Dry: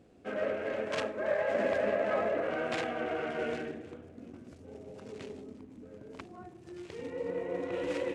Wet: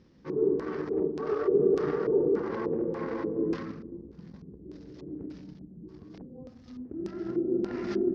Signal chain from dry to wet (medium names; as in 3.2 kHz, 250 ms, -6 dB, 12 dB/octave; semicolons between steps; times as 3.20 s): LFO low-pass square 1.7 Hz 560–7400 Hz; pitch shift -6 st; trim +1 dB